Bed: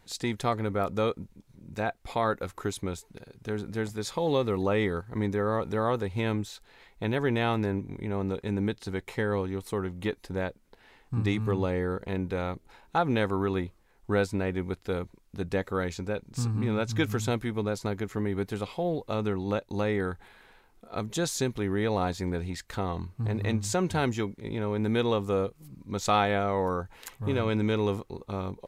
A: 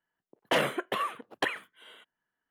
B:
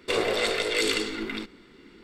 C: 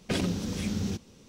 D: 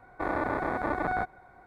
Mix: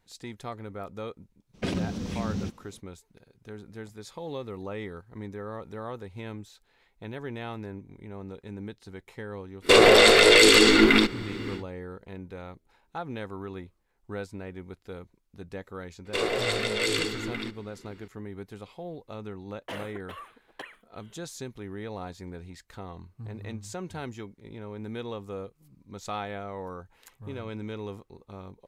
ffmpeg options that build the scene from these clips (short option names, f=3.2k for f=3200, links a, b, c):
-filter_complex "[2:a]asplit=2[a][b];[0:a]volume=-10dB[c];[3:a]aemphasis=mode=reproduction:type=cd[d];[a]alimiter=level_in=20.5dB:limit=-1dB:release=50:level=0:latency=1[e];[d]atrim=end=1.28,asetpts=PTS-STARTPTS,volume=-1dB,afade=t=in:d=0.02,afade=t=out:st=1.26:d=0.02,adelay=1530[f];[e]atrim=end=2.03,asetpts=PTS-STARTPTS,volume=-5dB,afade=t=in:d=0.1,afade=t=out:st=1.93:d=0.1,adelay=9610[g];[b]atrim=end=2.03,asetpts=PTS-STARTPTS,volume=-2dB,afade=t=in:d=0.004:c=hsin,afade=t=out:st=2.026:d=0.004:c=hsin,adelay=16050[h];[1:a]atrim=end=2.5,asetpts=PTS-STARTPTS,volume=-12.5dB,afade=t=in:d=0.004:c=hsin,afade=t=out:st=2.496:d=0.004:c=hsin,adelay=19170[i];[c][f][g][h][i]amix=inputs=5:normalize=0"